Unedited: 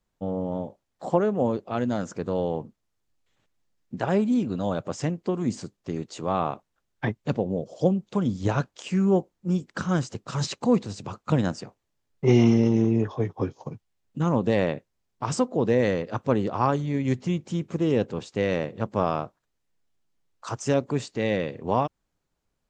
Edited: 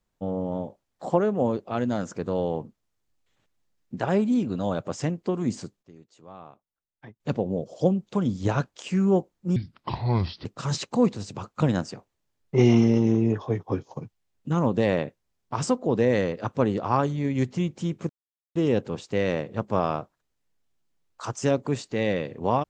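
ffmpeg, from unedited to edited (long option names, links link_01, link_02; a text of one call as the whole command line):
ffmpeg -i in.wav -filter_complex "[0:a]asplit=6[link_01][link_02][link_03][link_04][link_05][link_06];[link_01]atrim=end=5.83,asetpts=PTS-STARTPTS,afade=type=out:start_time=5.44:duration=0.39:curve=log:silence=0.112202[link_07];[link_02]atrim=start=5.83:end=7.2,asetpts=PTS-STARTPTS,volume=-19dB[link_08];[link_03]atrim=start=7.2:end=9.564,asetpts=PTS-STARTPTS,afade=type=in:duration=0.39:curve=log:silence=0.112202[link_09];[link_04]atrim=start=9.56:end=10.15,asetpts=PTS-STARTPTS,asetrate=29106,aresample=44100[link_10];[link_05]atrim=start=10.146:end=17.79,asetpts=PTS-STARTPTS,afade=type=out:start_time=7.64:duration=0.004:curve=hsin,apad=pad_dur=0.46[link_11];[link_06]atrim=start=17.79,asetpts=PTS-STARTPTS,afade=type=in:duration=0.004:curve=hsin[link_12];[link_07][link_08][link_09]concat=n=3:v=0:a=1[link_13];[link_13][link_10]acrossfade=duration=0.004:curve1=hsin:curve2=hsin[link_14];[link_11][link_12]concat=n=2:v=0:a=1[link_15];[link_14][link_15]acrossfade=duration=0.004:curve1=hsin:curve2=hsin" out.wav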